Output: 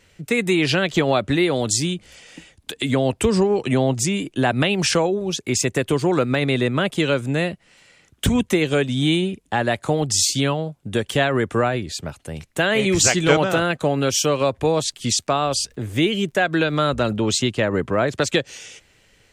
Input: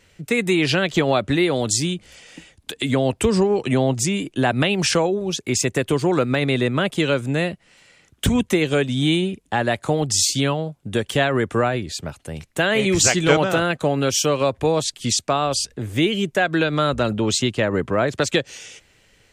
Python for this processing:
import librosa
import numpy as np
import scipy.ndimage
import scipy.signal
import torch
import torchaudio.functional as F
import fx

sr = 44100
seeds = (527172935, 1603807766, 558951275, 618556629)

y = fx.dmg_crackle(x, sr, seeds[0], per_s=67.0, level_db=-45.0, at=(14.89, 17.18), fade=0.02)